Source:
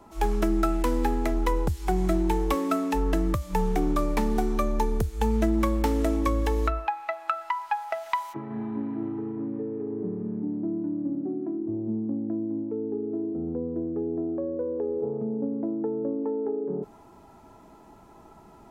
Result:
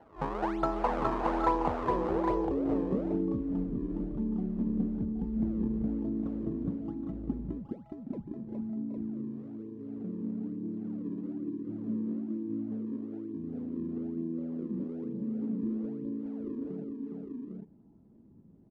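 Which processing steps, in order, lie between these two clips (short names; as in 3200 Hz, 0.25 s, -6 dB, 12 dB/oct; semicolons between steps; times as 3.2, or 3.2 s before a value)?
decimation with a swept rate 36×, swing 160% 1.1 Hz; tilt +3 dB/oct; low-pass sweep 920 Hz -> 220 Hz, 1.56–2.93; high shelf 4100 Hz +7.5 dB; on a send: tapped delay 0.414/0.77/0.807 s -4/-9.5/-4 dB; on the sum: gain -4 dB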